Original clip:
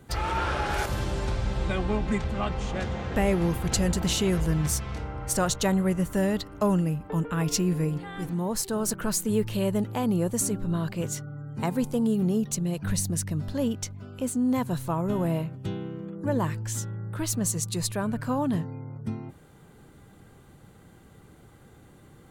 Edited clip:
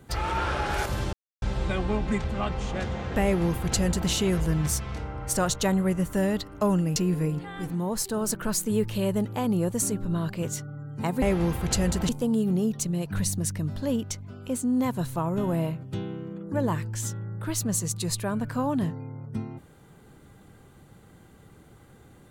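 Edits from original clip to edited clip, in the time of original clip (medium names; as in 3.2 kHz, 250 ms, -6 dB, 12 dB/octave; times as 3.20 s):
1.13–1.42 s: mute
3.23–4.10 s: copy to 11.81 s
6.96–7.55 s: delete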